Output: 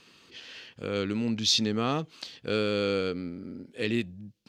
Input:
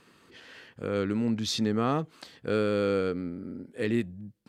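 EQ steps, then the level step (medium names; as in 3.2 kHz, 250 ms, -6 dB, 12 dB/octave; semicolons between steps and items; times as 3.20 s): high-order bell 4 kHz +9.5 dB; -1.5 dB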